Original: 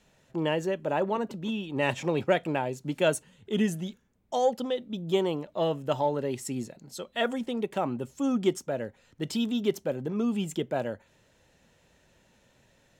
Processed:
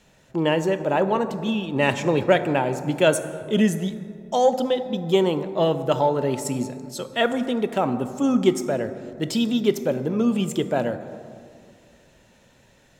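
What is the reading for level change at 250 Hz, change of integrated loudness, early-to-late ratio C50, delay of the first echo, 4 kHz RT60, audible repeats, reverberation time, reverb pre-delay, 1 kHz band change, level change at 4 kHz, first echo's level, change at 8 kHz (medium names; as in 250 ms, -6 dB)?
+7.0 dB, +7.0 dB, 11.0 dB, no echo, 1.2 s, no echo, 2.2 s, 13 ms, +7.0 dB, +6.5 dB, no echo, +6.5 dB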